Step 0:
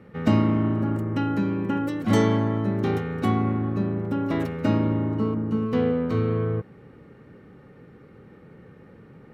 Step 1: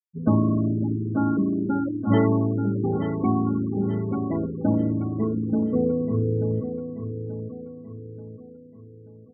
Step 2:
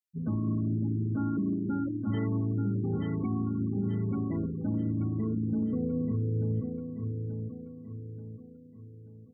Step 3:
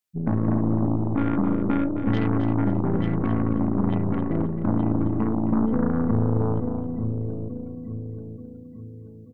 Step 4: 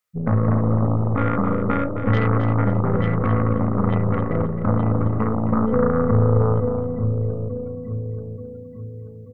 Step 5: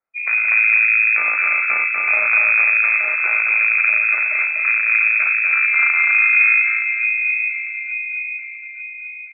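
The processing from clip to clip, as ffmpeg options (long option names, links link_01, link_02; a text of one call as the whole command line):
ffmpeg -i in.wav -filter_complex "[0:a]afftfilt=real='re*gte(hypot(re,im),0.112)':imag='im*gte(hypot(re,im),0.112)':win_size=1024:overlap=0.75,asplit=2[link_01][link_02];[link_02]aecho=0:1:883|1766|2649|3532|4415:0.376|0.165|0.0728|0.032|0.0141[link_03];[link_01][link_03]amix=inputs=2:normalize=0" out.wav
ffmpeg -i in.wav -af "equalizer=frequency=680:width=0.72:gain=-14,alimiter=limit=-22.5dB:level=0:latency=1:release=63" out.wav
ffmpeg -i in.wav -filter_complex "[0:a]aeval=exprs='0.0794*(cos(1*acos(clip(val(0)/0.0794,-1,1)))-cos(1*PI/2))+0.02*(cos(3*acos(clip(val(0)/0.0794,-1,1)))-cos(3*PI/2))+0.00891*(cos(4*acos(clip(val(0)/0.0794,-1,1)))-cos(4*PI/2))+0.01*(cos(5*acos(clip(val(0)/0.0794,-1,1)))-cos(5*PI/2))':channel_layout=same,asplit=2[link_01][link_02];[link_02]aecho=0:1:266|532|798:0.316|0.0885|0.0248[link_03];[link_01][link_03]amix=inputs=2:normalize=0,volume=9dB" out.wav
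ffmpeg -i in.wav -af "equalizer=frequency=100:width_type=o:width=0.33:gain=8,equalizer=frequency=315:width_type=o:width=0.33:gain=-11,equalizer=frequency=500:width_type=o:width=0.33:gain=11,equalizer=frequency=1250:width_type=o:width=0.33:gain=12,equalizer=frequency=2000:width_type=o:width=0.33:gain=7,volume=2dB" out.wav
ffmpeg -i in.wav -af "aecho=1:1:244:0.631,lowpass=frequency=2200:width_type=q:width=0.5098,lowpass=frequency=2200:width_type=q:width=0.6013,lowpass=frequency=2200:width_type=q:width=0.9,lowpass=frequency=2200:width_type=q:width=2.563,afreqshift=-2600" out.wav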